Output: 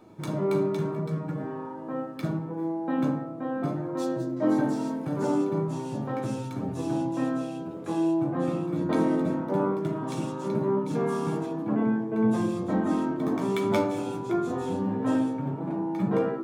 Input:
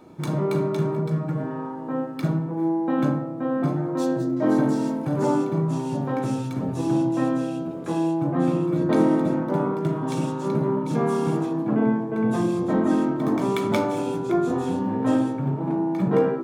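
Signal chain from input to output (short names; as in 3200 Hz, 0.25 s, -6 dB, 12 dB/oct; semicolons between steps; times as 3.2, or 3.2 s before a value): flange 0.49 Hz, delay 9.1 ms, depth 2 ms, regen +42%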